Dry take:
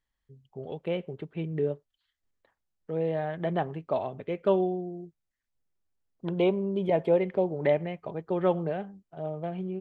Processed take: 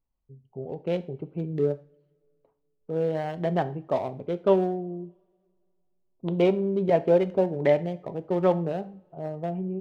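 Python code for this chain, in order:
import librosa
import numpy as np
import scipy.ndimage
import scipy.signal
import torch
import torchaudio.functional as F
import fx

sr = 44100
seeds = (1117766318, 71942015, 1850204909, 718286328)

y = fx.wiener(x, sr, points=25)
y = fx.rev_double_slope(y, sr, seeds[0], early_s=0.4, late_s=2.3, knee_db=-27, drr_db=11.5)
y = F.gain(torch.from_numpy(y), 3.0).numpy()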